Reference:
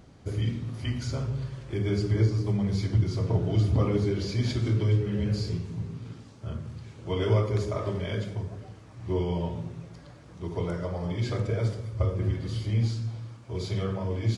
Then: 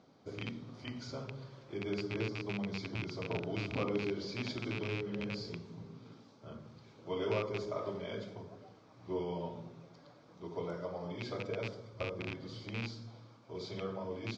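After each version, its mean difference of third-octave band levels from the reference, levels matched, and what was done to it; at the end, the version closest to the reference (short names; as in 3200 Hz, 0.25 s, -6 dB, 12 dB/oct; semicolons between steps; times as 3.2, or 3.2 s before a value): 5.0 dB: rattling part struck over -23 dBFS, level -19 dBFS; speaker cabinet 240–5500 Hz, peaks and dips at 350 Hz -3 dB, 1800 Hz -8 dB, 2800 Hz -7 dB; gain -5 dB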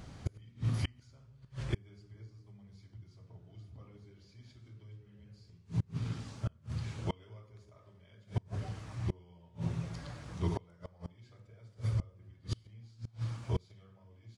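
12.5 dB: bell 370 Hz -6.5 dB 1.6 oct; flipped gate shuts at -26 dBFS, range -32 dB; gain +5 dB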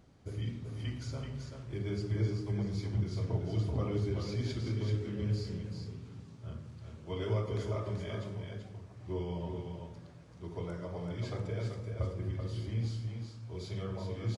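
2.0 dB: on a send: echo 0.383 s -5.5 dB; on the sum: gain -9 dB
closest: third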